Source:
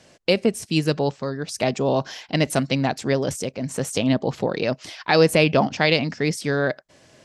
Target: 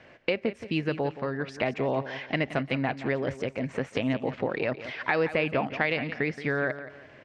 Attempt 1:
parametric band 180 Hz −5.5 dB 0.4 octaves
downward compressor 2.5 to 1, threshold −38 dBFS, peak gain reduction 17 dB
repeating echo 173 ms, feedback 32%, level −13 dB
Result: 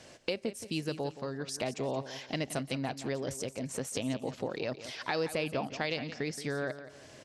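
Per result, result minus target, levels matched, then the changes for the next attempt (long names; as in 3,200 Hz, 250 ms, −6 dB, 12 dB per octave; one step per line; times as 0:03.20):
downward compressor: peak gain reduction +6 dB; 2,000 Hz band −3.5 dB
change: downward compressor 2.5 to 1, threshold −27.5 dBFS, peak gain reduction 10.5 dB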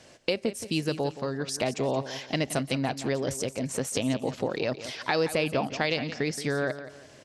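2,000 Hz band −3.5 dB
add first: low-pass with resonance 2,100 Hz, resonance Q 1.9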